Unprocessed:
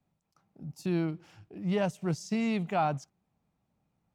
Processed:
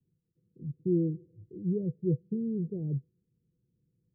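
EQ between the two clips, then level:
Chebyshev low-pass with heavy ripple 510 Hz, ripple 9 dB
+5.5 dB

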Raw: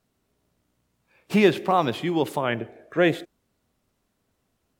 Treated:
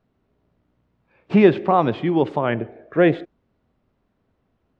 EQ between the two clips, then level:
high-frequency loss of the air 63 metres
head-to-tape spacing loss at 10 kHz 27 dB
+6.0 dB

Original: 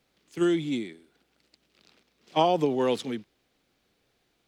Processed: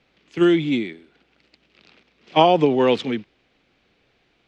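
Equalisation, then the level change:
high-frequency loss of the air 140 metres
parametric band 2,500 Hz +5.5 dB 0.85 octaves
+8.0 dB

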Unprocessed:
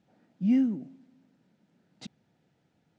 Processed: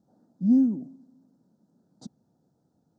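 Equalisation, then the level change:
Butterworth band-reject 2,400 Hz, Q 0.6
parametric band 250 Hz +4 dB 0.65 octaves
0.0 dB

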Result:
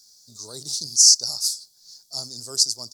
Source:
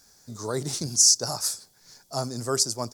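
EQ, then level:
high shelf with overshoot 3,100 Hz +13 dB, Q 3
−13.0 dB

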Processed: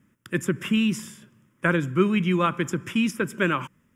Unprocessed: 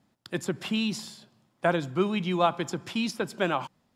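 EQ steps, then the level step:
phaser with its sweep stopped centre 1,800 Hz, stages 4
+7.5 dB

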